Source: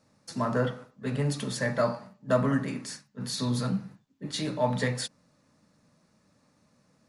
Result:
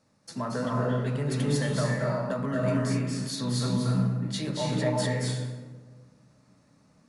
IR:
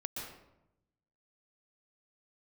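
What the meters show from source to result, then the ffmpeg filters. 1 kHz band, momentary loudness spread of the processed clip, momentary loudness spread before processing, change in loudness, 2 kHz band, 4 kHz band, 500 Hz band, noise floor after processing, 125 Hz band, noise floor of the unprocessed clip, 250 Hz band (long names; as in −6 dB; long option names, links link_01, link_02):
−0.5 dB, 7 LU, 11 LU, +2.0 dB, −0.5 dB, +1.0 dB, 0.0 dB, −63 dBFS, +5.0 dB, −68 dBFS, +2.5 dB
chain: -filter_complex "[0:a]alimiter=limit=-20.5dB:level=0:latency=1:release=131[link_01];[1:a]atrim=start_sample=2205,asetrate=22932,aresample=44100[link_02];[link_01][link_02]afir=irnorm=-1:irlink=0,volume=-2dB"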